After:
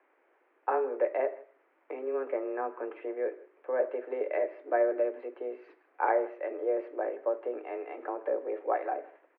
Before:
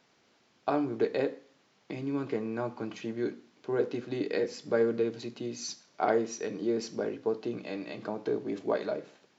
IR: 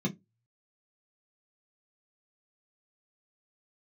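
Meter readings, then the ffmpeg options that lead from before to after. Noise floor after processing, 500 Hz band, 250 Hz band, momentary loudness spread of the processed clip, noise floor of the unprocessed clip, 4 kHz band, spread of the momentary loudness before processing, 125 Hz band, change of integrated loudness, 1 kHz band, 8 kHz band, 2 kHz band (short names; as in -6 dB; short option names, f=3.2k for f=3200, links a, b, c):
-70 dBFS, +1.0 dB, -8.5 dB, 11 LU, -68 dBFS, under -20 dB, 10 LU, under -40 dB, 0.0 dB, +4.0 dB, n/a, 0.0 dB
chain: -af "highpass=f=160:t=q:w=0.5412,highpass=f=160:t=q:w=1.307,lowpass=f=2.1k:t=q:w=0.5176,lowpass=f=2.1k:t=q:w=0.7071,lowpass=f=2.1k:t=q:w=1.932,afreqshift=130,aecho=1:1:159:0.0794"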